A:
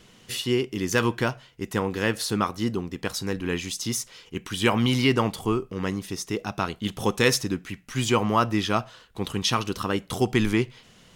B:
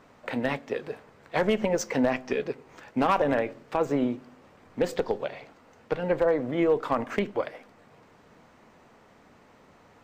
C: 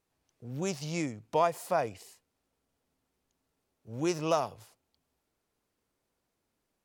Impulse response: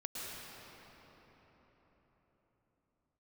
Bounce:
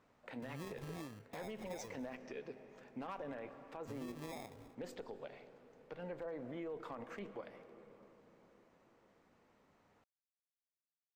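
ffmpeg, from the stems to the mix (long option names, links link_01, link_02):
-filter_complex "[1:a]volume=-16.5dB,asplit=2[link_01][link_02];[link_02]volume=-14.5dB[link_03];[2:a]alimiter=level_in=1dB:limit=-24dB:level=0:latency=1:release=232,volume=-1dB,acrusher=samples=30:mix=1:aa=0.000001,volume=-3.5dB,acompressor=threshold=-44dB:ratio=6,volume=0dB[link_04];[3:a]atrim=start_sample=2205[link_05];[link_03][link_05]afir=irnorm=-1:irlink=0[link_06];[link_01][link_04][link_06]amix=inputs=3:normalize=0,alimiter=level_in=13dB:limit=-24dB:level=0:latency=1:release=65,volume=-13dB"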